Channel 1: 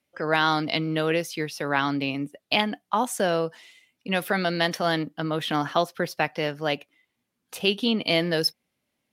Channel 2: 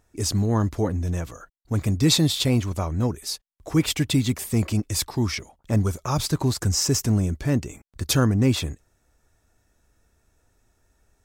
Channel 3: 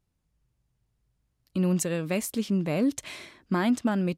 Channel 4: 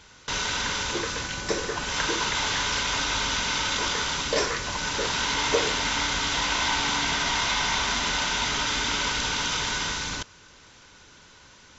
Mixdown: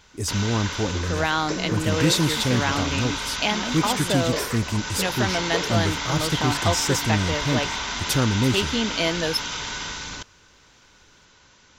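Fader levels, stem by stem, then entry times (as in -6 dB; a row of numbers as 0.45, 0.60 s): -1.5, -2.0, -8.5, -3.0 dB; 0.90, 0.00, 0.00, 0.00 s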